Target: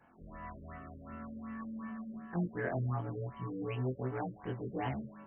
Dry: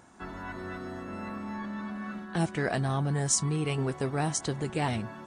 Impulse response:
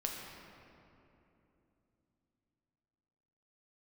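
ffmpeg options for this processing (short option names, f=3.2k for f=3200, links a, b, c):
-af "afftfilt=real='re':imag='-im':win_size=2048:overlap=0.75,afftfilt=real='re*lt(b*sr/1024,550*pow(3300/550,0.5+0.5*sin(2*PI*2.7*pts/sr)))':imag='im*lt(b*sr/1024,550*pow(3300/550,0.5+0.5*sin(2*PI*2.7*pts/sr)))':win_size=1024:overlap=0.75,volume=-2.5dB"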